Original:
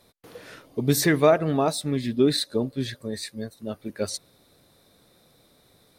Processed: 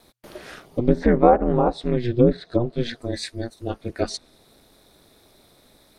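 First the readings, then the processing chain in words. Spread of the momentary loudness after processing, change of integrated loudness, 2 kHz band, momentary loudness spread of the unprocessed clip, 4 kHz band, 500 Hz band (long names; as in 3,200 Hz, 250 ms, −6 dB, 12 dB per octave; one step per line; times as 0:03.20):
15 LU, +3.0 dB, −3.5 dB, 16 LU, −5.0 dB, +3.0 dB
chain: ring modulation 120 Hz
treble cut that deepens with the level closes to 980 Hz, closed at −20.5 dBFS
level +7 dB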